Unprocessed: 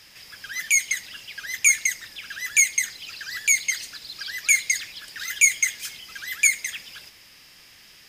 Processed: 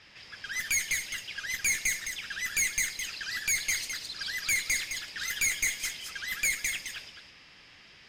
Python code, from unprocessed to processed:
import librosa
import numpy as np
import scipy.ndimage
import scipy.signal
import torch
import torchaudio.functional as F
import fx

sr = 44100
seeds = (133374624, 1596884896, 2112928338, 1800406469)

y = fx.tube_stage(x, sr, drive_db=24.0, bias=0.4)
y = fx.env_lowpass(y, sr, base_hz=3000.0, full_db=-30.0)
y = y + 10.0 ** (-6.5 / 20.0) * np.pad(y, (int(212 * sr / 1000.0), 0))[:len(y)]